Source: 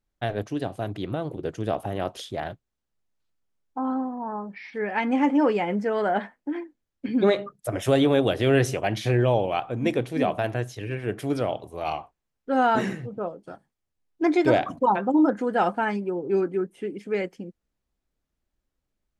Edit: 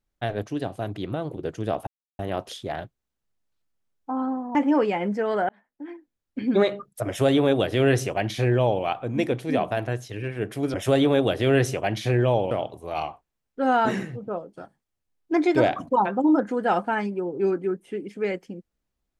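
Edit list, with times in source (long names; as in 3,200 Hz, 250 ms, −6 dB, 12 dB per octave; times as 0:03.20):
0:01.87: splice in silence 0.32 s
0:04.23–0:05.22: remove
0:06.16–0:07.06: fade in
0:07.74–0:09.51: duplicate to 0:11.41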